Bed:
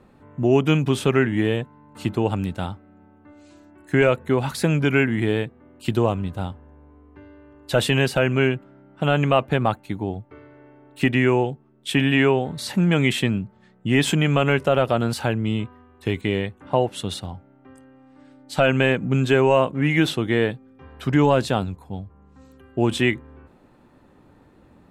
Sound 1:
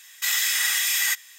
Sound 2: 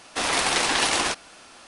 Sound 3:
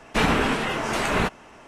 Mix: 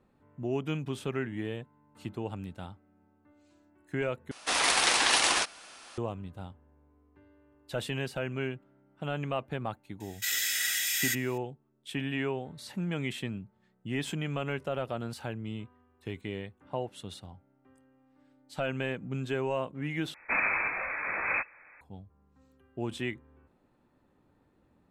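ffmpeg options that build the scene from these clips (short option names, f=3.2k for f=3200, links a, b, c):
-filter_complex "[0:a]volume=-14.5dB[a];[2:a]lowshelf=f=490:g=-9[b];[1:a]asuperstop=centerf=1000:order=8:qfactor=2[c];[3:a]lowpass=f=2.2k:t=q:w=0.5098,lowpass=f=2.2k:t=q:w=0.6013,lowpass=f=2.2k:t=q:w=0.9,lowpass=f=2.2k:t=q:w=2.563,afreqshift=-2600[d];[a]asplit=3[e][f][g];[e]atrim=end=4.314[h];[b]atrim=end=1.67,asetpts=PTS-STARTPTS,volume=-1.5dB[i];[f]atrim=start=5.976:end=20.144[j];[d]atrim=end=1.67,asetpts=PTS-STARTPTS,volume=-7.5dB[k];[g]atrim=start=21.806[l];[c]atrim=end=1.38,asetpts=PTS-STARTPTS,volume=-7dB,afade=t=in:d=0.004:c=hsin,afade=t=out:st=1.376:d=0.004:c=hsin,adelay=10000[m];[h][i]acrossfade=d=0.004:c1=hsin:c2=hsin[n];[n][j]acrossfade=d=0.004:c1=hsin:c2=hsin[o];[o][k]acrossfade=d=0.004:c1=hsin:c2=hsin[p];[p][l]acrossfade=d=0.004:c1=hsin:c2=hsin[q];[q][m]amix=inputs=2:normalize=0"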